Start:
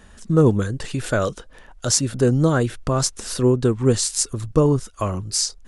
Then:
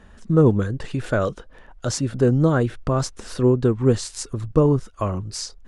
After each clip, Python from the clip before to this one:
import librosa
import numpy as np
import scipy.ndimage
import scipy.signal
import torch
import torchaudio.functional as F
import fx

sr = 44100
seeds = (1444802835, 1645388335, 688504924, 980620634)

y = fx.lowpass(x, sr, hz=2100.0, slope=6)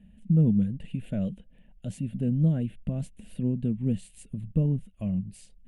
y = fx.curve_eq(x, sr, hz=(130.0, 190.0, 370.0, 630.0, 1200.0, 1900.0, 2800.0, 5400.0, 9600.0), db=(0, 13, -13, -7, -28, -10, 0, -25, -3))
y = F.gain(torch.from_numpy(y), -8.5).numpy()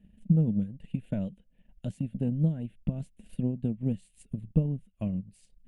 y = fx.transient(x, sr, attack_db=7, sustain_db=-6)
y = F.gain(torch.from_numpy(y), -5.0).numpy()